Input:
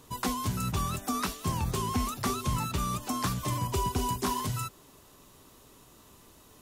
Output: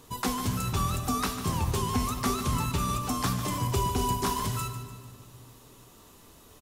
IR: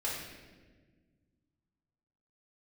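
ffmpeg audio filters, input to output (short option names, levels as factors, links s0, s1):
-filter_complex "[0:a]aecho=1:1:148|296|444|592|740:0.266|0.128|0.0613|0.0294|0.0141,asplit=2[s0][s1];[1:a]atrim=start_sample=2205[s2];[s1][s2]afir=irnorm=-1:irlink=0,volume=0.266[s3];[s0][s3]amix=inputs=2:normalize=0"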